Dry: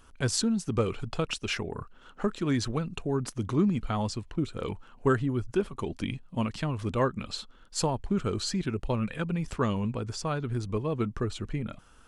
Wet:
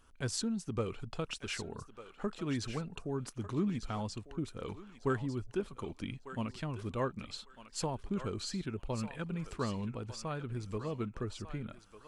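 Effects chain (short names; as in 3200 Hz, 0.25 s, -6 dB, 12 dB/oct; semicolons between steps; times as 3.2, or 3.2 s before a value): thinning echo 1.199 s, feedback 25%, high-pass 860 Hz, level -9 dB; gain -8 dB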